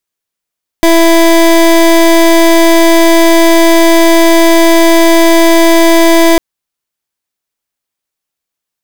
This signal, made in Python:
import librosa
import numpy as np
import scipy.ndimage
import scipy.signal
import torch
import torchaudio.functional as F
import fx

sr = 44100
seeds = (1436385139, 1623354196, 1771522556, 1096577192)

y = fx.pulse(sr, length_s=5.55, hz=332.0, level_db=-5.0, duty_pct=24)